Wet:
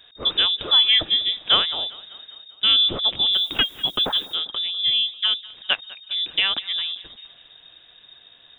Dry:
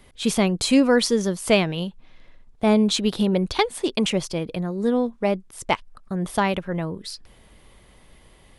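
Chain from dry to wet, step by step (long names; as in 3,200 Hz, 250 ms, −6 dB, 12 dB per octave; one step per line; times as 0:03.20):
on a send: feedback echo with a high-pass in the loop 198 ms, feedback 59%, high-pass 160 Hz, level −20.5 dB
on the sum: voice inversion scrambler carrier 3,700 Hz
0:03.32–0:04.34: background noise violet −51 dBFS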